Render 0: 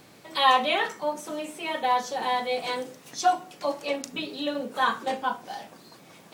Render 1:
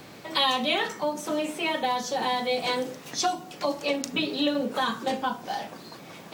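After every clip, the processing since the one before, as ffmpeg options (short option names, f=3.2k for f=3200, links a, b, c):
-filter_complex "[0:a]equalizer=f=10k:t=o:w=1.1:g=-6,acrossover=split=310|3600[a][b][c];[b]acompressor=threshold=-33dB:ratio=6[d];[a][d][c]amix=inputs=3:normalize=0,volume=7dB"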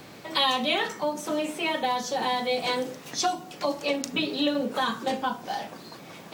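-af anull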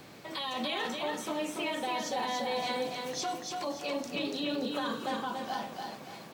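-filter_complex "[0:a]alimiter=limit=-21.5dB:level=0:latency=1:release=13,asplit=2[a][b];[b]aecho=0:1:286|572|858|1144|1430:0.631|0.233|0.0864|0.032|0.0118[c];[a][c]amix=inputs=2:normalize=0,volume=-5dB"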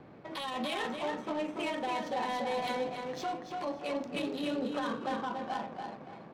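-af "adynamicsmooth=sensitivity=6:basefreq=1.2k"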